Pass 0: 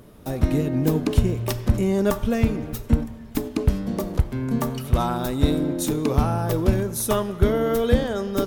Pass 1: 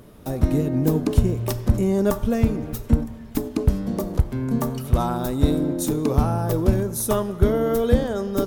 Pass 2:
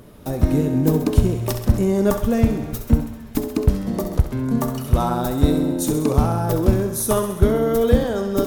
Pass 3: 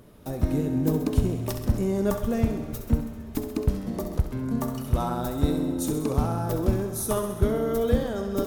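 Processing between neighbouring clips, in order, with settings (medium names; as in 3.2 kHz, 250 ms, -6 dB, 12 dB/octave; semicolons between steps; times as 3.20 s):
dynamic bell 2.6 kHz, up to -6 dB, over -45 dBFS, Q 0.74; trim +1 dB
thinning echo 66 ms, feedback 68%, high-pass 410 Hz, level -8.5 dB; trim +2 dB
reverberation RT60 4.3 s, pre-delay 35 ms, DRR 13.5 dB; trim -7 dB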